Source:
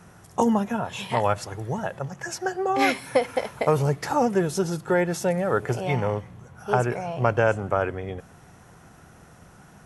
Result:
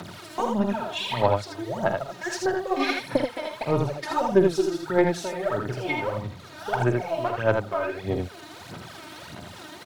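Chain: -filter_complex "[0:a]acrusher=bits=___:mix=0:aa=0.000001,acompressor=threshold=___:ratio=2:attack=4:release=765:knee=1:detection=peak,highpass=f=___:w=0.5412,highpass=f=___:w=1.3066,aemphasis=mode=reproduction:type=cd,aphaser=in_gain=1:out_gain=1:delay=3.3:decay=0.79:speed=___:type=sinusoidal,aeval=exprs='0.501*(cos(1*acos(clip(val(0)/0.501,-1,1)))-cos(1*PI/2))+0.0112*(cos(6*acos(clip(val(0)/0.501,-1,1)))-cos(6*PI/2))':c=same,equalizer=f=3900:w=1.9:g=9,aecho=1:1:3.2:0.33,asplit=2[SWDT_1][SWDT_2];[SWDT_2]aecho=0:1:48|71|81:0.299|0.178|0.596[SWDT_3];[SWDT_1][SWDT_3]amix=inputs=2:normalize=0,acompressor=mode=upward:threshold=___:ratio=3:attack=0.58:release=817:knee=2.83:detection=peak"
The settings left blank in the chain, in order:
7, -32dB, 96, 96, 1.6, -32dB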